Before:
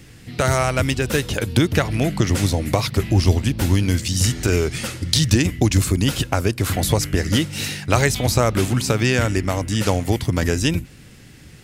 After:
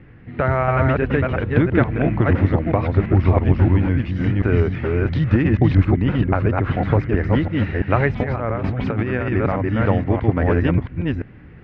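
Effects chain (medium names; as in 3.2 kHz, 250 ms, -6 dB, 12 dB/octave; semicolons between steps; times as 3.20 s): chunks repeated in reverse 340 ms, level -1.5 dB; low-pass 2 kHz 24 dB/octave; 8.20–9.32 s: compressor with a negative ratio -22 dBFS, ratio -1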